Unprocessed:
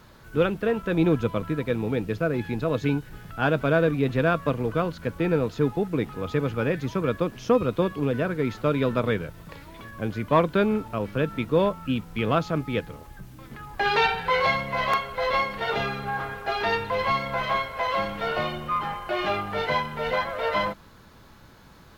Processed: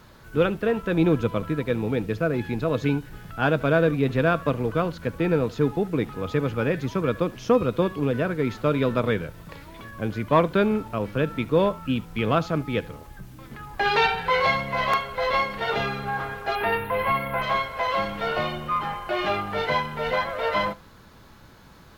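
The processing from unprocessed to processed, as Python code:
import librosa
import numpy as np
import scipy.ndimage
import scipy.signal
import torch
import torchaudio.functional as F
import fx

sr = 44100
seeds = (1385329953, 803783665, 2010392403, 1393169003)

y = fx.curve_eq(x, sr, hz=(2600.0, 7100.0, 10000.0), db=(0, -24, 11), at=(16.55, 17.42))
y = y + 10.0 ** (-22.0 / 20.0) * np.pad(y, (int(73 * sr / 1000.0), 0))[:len(y)]
y = y * 10.0 ** (1.0 / 20.0)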